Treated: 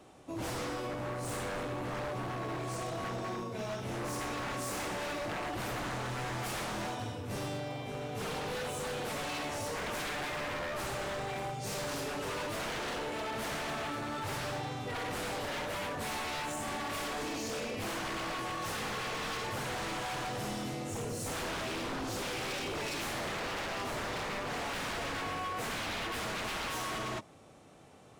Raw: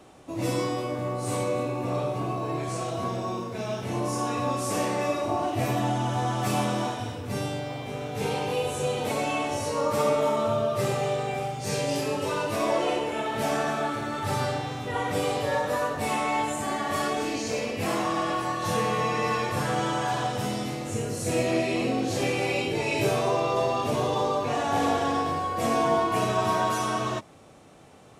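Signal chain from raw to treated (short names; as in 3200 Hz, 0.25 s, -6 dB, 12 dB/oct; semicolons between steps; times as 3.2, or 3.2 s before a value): wavefolder -27 dBFS; gain -5 dB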